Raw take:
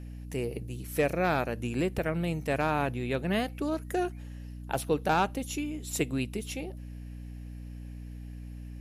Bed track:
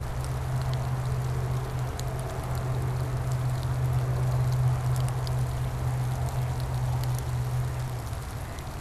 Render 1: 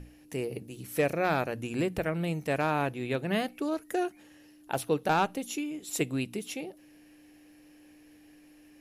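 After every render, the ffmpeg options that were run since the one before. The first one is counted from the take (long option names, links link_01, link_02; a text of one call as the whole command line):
ffmpeg -i in.wav -af "bandreject=frequency=60:width_type=h:width=6,bandreject=frequency=120:width_type=h:width=6,bandreject=frequency=180:width_type=h:width=6,bandreject=frequency=240:width_type=h:width=6" out.wav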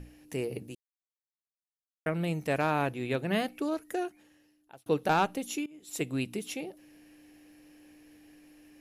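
ffmpeg -i in.wav -filter_complex "[0:a]asplit=5[link_01][link_02][link_03][link_04][link_05];[link_01]atrim=end=0.75,asetpts=PTS-STARTPTS,afade=type=out:start_time=0.746:duration=0.004:curve=hsin[link_06];[link_02]atrim=start=0.75:end=2.06,asetpts=PTS-STARTPTS,volume=0[link_07];[link_03]atrim=start=2.06:end=4.86,asetpts=PTS-STARTPTS,afade=type=in:duration=0.004:curve=hsin,afade=type=out:start_time=1.57:duration=1.23[link_08];[link_04]atrim=start=4.86:end=5.66,asetpts=PTS-STARTPTS,afade=type=in:duration=0.004:curve=hsin,afade=type=out:start_time=0.796:duration=0.004:curve=hsin:silence=0.1[link_09];[link_05]atrim=start=5.66,asetpts=PTS-STARTPTS,afade=type=in:duration=0.55:silence=0.1[link_10];[link_06][link_07][link_08][link_09][link_10]concat=n=5:v=0:a=1" out.wav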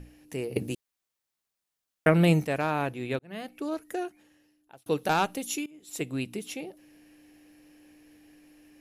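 ffmpeg -i in.wav -filter_complex "[0:a]asettb=1/sr,asplit=3[link_01][link_02][link_03];[link_01]atrim=end=4.824[link_04];[link_02]atrim=start=4.82:end=5.71,asetpts=PTS-STARTPTS,afade=type=in:duration=0.004:curve=qsin,afade=type=out:start_time=0.886:duration=0.004:curve=qsin,highshelf=frequency=3300:gain=7[link_05];[link_03]atrim=start=5.706[link_06];[link_04][link_05]acrossfade=duration=0.004:curve1=hsin:curve2=qsin[link_07];[link_07][link_06]acrossfade=duration=0.004:curve1=qsin:curve2=hsin,asplit=4[link_08][link_09][link_10][link_11];[link_08]atrim=end=0.562[link_12];[link_09]atrim=start=0.558:end=2.452,asetpts=PTS-STARTPTS,volume=10.5dB[link_13];[link_10]atrim=start=2.448:end=3.19,asetpts=PTS-STARTPTS,afade=type=out:start_time=0.738:duration=0.004:curve=hsin[link_14];[link_11]atrim=start=3.19,asetpts=PTS-STARTPTS,afade=type=in:duration=0.55[link_15];[link_12][link_13]acrossfade=duration=0.004:curve1=hsin:curve2=hsin[link_16];[link_14][link_15]concat=n=2:v=0:a=1[link_17];[link_16][link_17]acrossfade=duration=0.004:curve1=hsin:curve2=hsin" out.wav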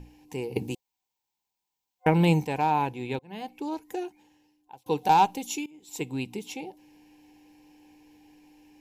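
ffmpeg -i in.wav -af "superequalizer=8b=0.501:9b=2.82:10b=0.355:11b=0.501:16b=0.398" out.wav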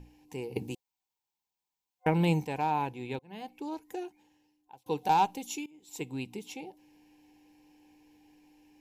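ffmpeg -i in.wav -af "volume=-5dB" out.wav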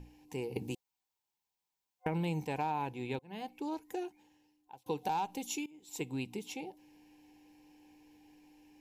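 ffmpeg -i in.wav -af "alimiter=limit=-21dB:level=0:latency=1:release=121,acompressor=threshold=-32dB:ratio=3" out.wav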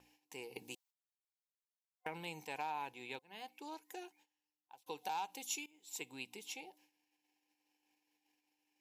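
ffmpeg -i in.wav -af "agate=range=-15dB:threshold=-59dB:ratio=16:detection=peak,highpass=frequency=1500:poles=1" out.wav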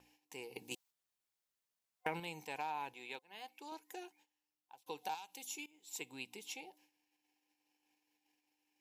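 ffmpeg -i in.wav -filter_complex "[0:a]asettb=1/sr,asplit=3[link_01][link_02][link_03];[link_01]atrim=end=0.714[link_04];[link_02]atrim=start=0.71:end=2.2,asetpts=PTS-STARTPTS,afade=type=in:duration=0.004:curve=qsin,afade=type=out:start_time=1.486:duration=0.004:curve=qsin,acontrast=31[link_05];[link_03]atrim=start=2.196[link_06];[link_04][link_05]acrossfade=duration=0.004:curve1=hsin:curve2=qsin[link_07];[link_07][link_06]acrossfade=duration=0.004:curve1=qsin:curve2=hsin,asettb=1/sr,asplit=3[link_08][link_09][link_10];[link_08]atrim=end=2.944[link_11];[link_09]atrim=start=2.94:end=3.72,asetpts=PTS-STARTPTS,afade=type=in:duration=0.004:curve=qsin,afade=type=out:start_time=0.776:duration=0.004:curve=qsin,highpass=frequency=380:poles=1[link_12];[link_10]atrim=start=3.716[link_13];[link_11][link_12]acrossfade=duration=0.004:curve1=hsin:curve2=qsin[link_14];[link_14][link_13]acrossfade=duration=0.004:curve1=qsin:curve2=hsin,asettb=1/sr,asplit=3[link_15][link_16][link_17];[link_15]atrim=end=5.144[link_18];[link_16]atrim=start=5.14:end=5.59,asetpts=PTS-STARTPTS,afade=type=in:duration=0.004:curve=qsin,afade=type=out:start_time=0.446:duration=0.004:curve=qsin,acrossover=split=1900|6800[link_19][link_20][link_21];[link_19]acompressor=threshold=-52dB:ratio=4[link_22];[link_20]acompressor=threshold=-52dB:ratio=4[link_23];[link_21]acompressor=threshold=-46dB:ratio=4[link_24];[link_22][link_23][link_24]amix=inputs=3:normalize=0[link_25];[link_17]atrim=start=5.586[link_26];[link_18][link_25]acrossfade=duration=0.004:curve1=hsin:curve2=qsin[link_27];[link_27][link_26]acrossfade=duration=0.004:curve1=qsin:curve2=hsin" out.wav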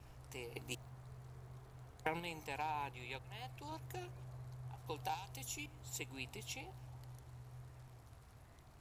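ffmpeg -i in.wav -i bed.wav -filter_complex "[1:a]volume=-25.5dB[link_01];[0:a][link_01]amix=inputs=2:normalize=0" out.wav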